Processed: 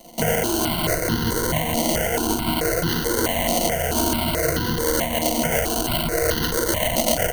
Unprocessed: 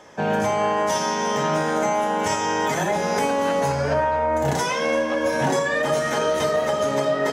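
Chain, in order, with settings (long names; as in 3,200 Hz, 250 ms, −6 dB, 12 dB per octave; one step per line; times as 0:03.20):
sample-rate reduction 1,200 Hz, jitter 20%
EQ curve with evenly spaced ripples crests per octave 1.9, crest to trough 12 dB
speech leveller 0.5 s
high-shelf EQ 4,000 Hz +7.5 dB
step-sequenced phaser 4.6 Hz 420–2,300 Hz
level +1 dB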